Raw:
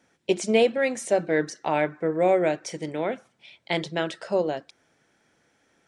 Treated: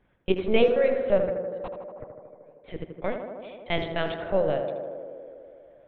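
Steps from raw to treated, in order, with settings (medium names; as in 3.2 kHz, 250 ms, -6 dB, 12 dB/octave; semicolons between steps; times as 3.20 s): 1.26–3.04 s: inverted gate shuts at -21 dBFS, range -38 dB; 3.83–4.33 s: high-pass 260 Hz 24 dB/octave; LPC vocoder at 8 kHz pitch kept; tape echo 79 ms, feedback 90%, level -5 dB, low-pass 1.8 kHz; tape noise reduction on one side only decoder only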